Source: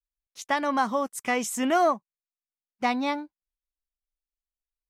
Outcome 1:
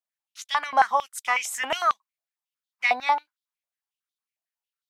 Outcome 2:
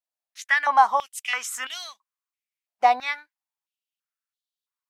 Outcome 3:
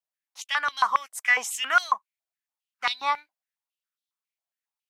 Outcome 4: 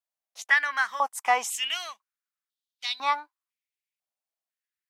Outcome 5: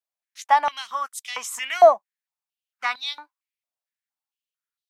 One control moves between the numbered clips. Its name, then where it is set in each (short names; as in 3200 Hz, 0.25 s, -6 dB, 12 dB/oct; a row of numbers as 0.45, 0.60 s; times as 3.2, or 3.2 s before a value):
stepped high-pass, rate: 11, 3, 7.3, 2, 4.4 Hz